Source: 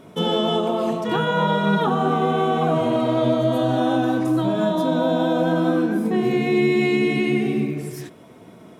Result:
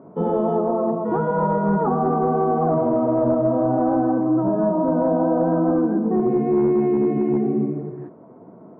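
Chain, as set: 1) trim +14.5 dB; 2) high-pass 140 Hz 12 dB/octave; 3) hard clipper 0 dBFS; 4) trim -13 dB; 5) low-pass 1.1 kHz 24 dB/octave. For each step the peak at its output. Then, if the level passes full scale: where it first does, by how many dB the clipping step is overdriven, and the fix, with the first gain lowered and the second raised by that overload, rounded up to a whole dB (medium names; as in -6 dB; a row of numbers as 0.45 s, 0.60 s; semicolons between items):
+7.0 dBFS, +6.5 dBFS, 0.0 dBFS, -13.0 dBFS, -11.5 dBFS; step 1, 6.5 dB; step 1 +7.5 dB, step 4 -6 dB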